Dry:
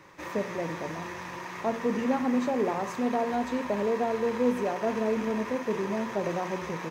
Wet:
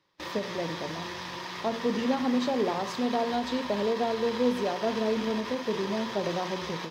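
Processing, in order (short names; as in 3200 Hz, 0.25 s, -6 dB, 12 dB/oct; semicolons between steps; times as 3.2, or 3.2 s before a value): gate with hold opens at -32 dBFS; band shelf 4000 Hz +11 dB 1 oct; ending taper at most 150 dB/s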